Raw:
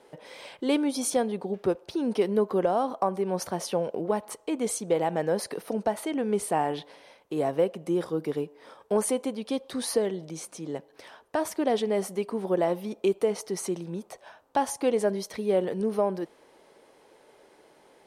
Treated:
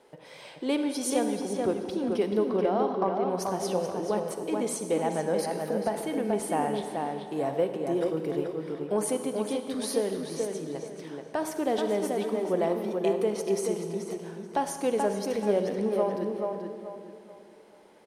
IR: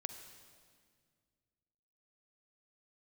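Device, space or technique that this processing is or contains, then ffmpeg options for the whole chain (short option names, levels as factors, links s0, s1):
stairwell: -filter_complex "[0:a]asettb=1/sr,asplit=3[s0][s1][s2];[s0]atrim=end=2.464[s3];[s1]atrim=start=2.46:end=3.3,asetpts=PTS-STARTPTS,afade=t=in:d=0.004:c=qsin,afade=t=out:st=0.836:d=0.004:c=qsin,lowpass=f=5100:w=0.5412,lowpass=f=5100:w=1.3066[s4];[s2]atrim=start=3.296[s5];[s3][s4]acrossfade=d=0.004:c1=hsin:c2=qsin[s6];[s6][s5]acrossfade=d=0.004:c1=qsin:c2=hsin[s7];[1:a]atrim=start_sample=2205[s8];[s7][s8]afir=irnorm=-1:irlink=0,asplit=2[s9][s10];[s10]adelay=432,lowpass=f=3400:p=1,volume=0.631,asplit=2[s11][s12];[s12]adelay=432,lowpass=f=3400:p=1,volume=0.33,asplit=2[s13][s14];[s14]adelay=432,lowpass=f=3400:p=1,volume=0.33,asplit=2[s15][s16];[s16]adelay=432,lowpass=f=3400:p=1,volume=0.33[s17];[s9][s11][s13][s15][s17]amix=inputs=5:normalize=0"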